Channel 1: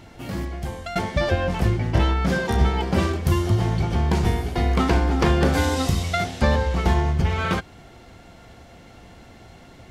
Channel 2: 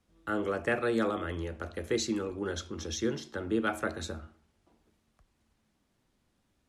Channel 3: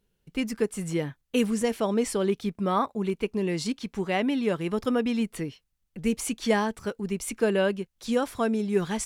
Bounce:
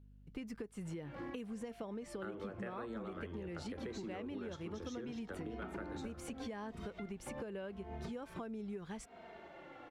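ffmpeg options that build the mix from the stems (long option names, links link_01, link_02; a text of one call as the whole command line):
ffmpeg -i stem1.wav -i stem2.wav -i stem3.wav -filter_complex "[0:a]acrossover=split=260 3300:gain=0.0794 1 0.2[link_01][link_02][link_03];[link_01][link_02][link_03]amix=inputs=3:normalize=0,acrossover=split=280[link_04][link_05];[link_05]acompressor=threshold=-39dB:ratio=4[link_06];[link_04][link_06]amix=inputs=2:normalize=0,asplit=2[link_07][link_08];[link_08]adelay=2.9,afreqshift=-0.81[link_09];[link_07][link_09]amix=inputs=2:normalize=1,adelay=850,volume=0dB[link_10];[1:a]acompressor=threshold=-45dB:ratio=2,adelay=1950,volume=-1dB[link_11];[2:a]aeval=exprs='val(0)+0.00282*(sin(2*PI*50*n/s)+sin(2*PI*2*50*n/s)/2+sin(2*PI*3*50*n/s)/3+sin(2*PI*4*50*n/s)/4+sin(2*PI*5*50*n/s)/5)':channel_layout=same,volume=-7dB,asplit=2[link_12][link_13];[link_13]apad=whole_len=474344[link_14];[link_10][link_14]sidechaincompress=threshold=-42dB:ratio=8:attack=16:release=278[link_15];[link_15][link_12]amix=inputs=2:normalize=0,acompressor=threshold=-38dB:ratio=6,volume=0dB[link_16];[link_11][link_16]amix=inputs=2:normalize=0,highshelf=frequency=4600:gain=-11.5,acompressor=threshold=-40dB:ratio=6" out.wav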